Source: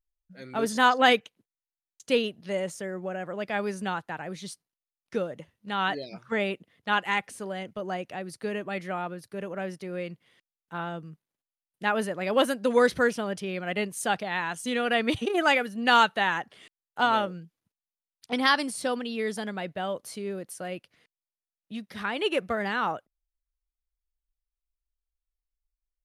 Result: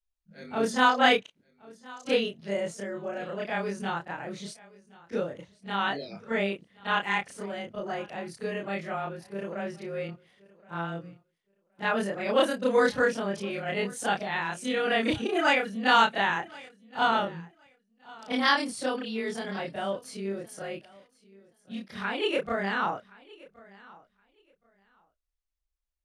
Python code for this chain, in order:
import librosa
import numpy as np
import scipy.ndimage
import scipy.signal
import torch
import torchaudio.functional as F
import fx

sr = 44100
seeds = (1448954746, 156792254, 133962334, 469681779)

y = fx.frame_reverse(x, sr, frame_ms=71.0)
y = scipy.signal.sosfilt(scipy.signal.butter(2, 8800.0, 'lowpass', fs=sr, output='sos'), y)
y = fx.echo_feedback(y, sr, ms=1071, feedback_pct=18, wet_db=-22.5)
y = y * librosa.db_to_amplitude(2.5)